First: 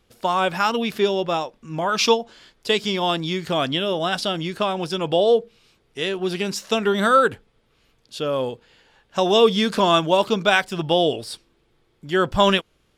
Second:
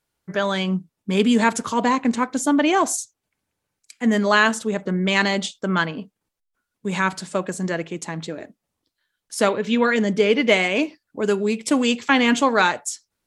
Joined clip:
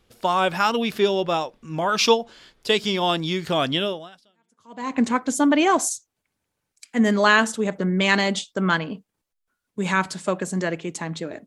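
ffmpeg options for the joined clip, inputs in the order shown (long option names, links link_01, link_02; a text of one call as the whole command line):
ffmpeg -i cue0.wav -i cue1.wav -filter_complex "[0:a]apad=whole_dur=11.46,atrim=end=11.46,atrim=end=4.96,asetpts=PTS-STARTPTS[link_01];[1:a]atrim=start=0.93:end=8.53,asetpts=PTS-STARTPTS[link_02];[link_01][link_02]acrossfade=duration=1.1:curve1=exp:curve2=exp" out.wav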